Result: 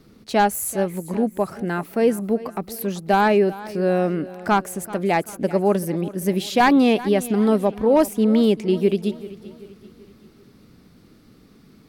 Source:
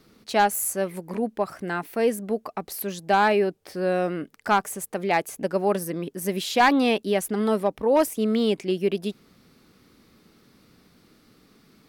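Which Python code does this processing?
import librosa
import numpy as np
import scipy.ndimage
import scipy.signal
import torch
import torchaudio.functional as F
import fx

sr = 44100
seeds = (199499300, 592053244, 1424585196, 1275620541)

y = fx.low_shelf(x, sr, hz=400.0, db=9.0)
y = fx.echo_feedback(y, sr, ms=387, feedback_pct=46, wet_db=-17.5)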